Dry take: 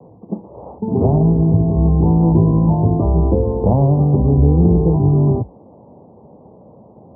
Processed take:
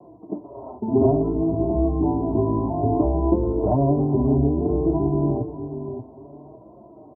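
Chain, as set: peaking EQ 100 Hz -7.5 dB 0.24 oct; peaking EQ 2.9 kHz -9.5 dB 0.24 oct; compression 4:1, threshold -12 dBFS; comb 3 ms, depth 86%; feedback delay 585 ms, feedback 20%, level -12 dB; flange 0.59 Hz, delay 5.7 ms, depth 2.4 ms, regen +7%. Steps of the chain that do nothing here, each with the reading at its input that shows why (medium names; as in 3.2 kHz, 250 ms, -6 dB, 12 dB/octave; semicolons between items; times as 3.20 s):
peaking EQ 2.9 kHz: input has nothing above 1 kHz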